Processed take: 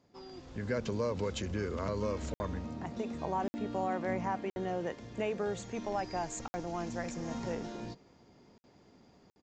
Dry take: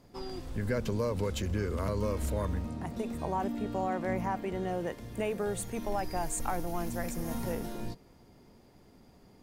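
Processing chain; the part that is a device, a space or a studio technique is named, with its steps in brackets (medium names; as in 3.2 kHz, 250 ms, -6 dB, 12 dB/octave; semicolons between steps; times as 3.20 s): call with lost packets (high-pass 130 Hz 6 dB/octave; resampled via 16 kHz; level rider gain up to 7.5 dB; lost packets of 60 ms); trim -8.5 dB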